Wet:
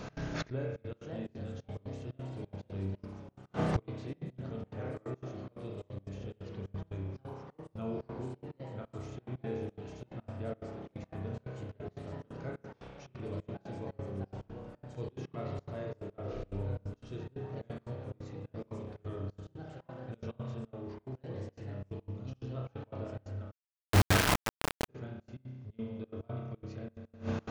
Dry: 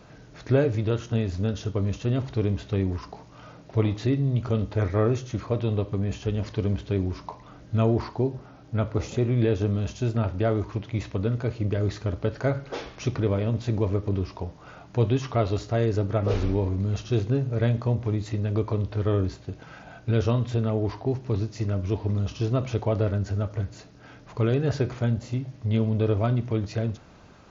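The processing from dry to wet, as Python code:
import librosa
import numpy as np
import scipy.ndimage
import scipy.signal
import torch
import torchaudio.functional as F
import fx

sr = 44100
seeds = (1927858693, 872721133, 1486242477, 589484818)

y = fx.echo_pitch(x, sr, ms=631, semitones=3, count=3, db_per_echo=-6.0)
y = fx.rev_spring(y, sr, rt60_s=1.4, pass_ms=(31,), chirp_ms=80, drr_db=-2.0)
y = fx.gate_flip(y, sr, shuts_db=-24.0, range_db=-26)
y = fx.step_gate(y, sr, bpm=178, pattern='x.xxx.xxx.', floor_db=-24.0, edge_ms=4.5)
y = fx.quant_companded(y, sr, bits=2, at=(23.5, 24.88), fade=0.02)
y = F.gain(torch.from_numpy(y), 6.5).numpy()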